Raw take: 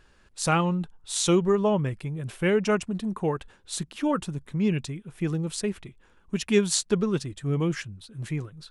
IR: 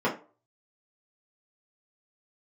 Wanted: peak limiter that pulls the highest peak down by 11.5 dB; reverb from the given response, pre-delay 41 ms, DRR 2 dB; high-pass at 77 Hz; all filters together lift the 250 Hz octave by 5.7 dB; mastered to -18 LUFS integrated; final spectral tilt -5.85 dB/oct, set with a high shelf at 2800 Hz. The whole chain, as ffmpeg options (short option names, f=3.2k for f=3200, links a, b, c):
-filter_complex "[0:a]highpass=77,equalizer=f=250:t=o:g=8.5,highshelf=f=2.8k:g=5.5,alimiter=limit=-13.5dB:level=0:latency=1,asplit=2[a][b];[1:a]atrim=start_sample=2205,adelay=41[c];[b][c]afir=irnorm=-1:irlink=0,volume=-15dB[d];[a][d]amix=inputs=2:normalize=0,volume=3.5dB"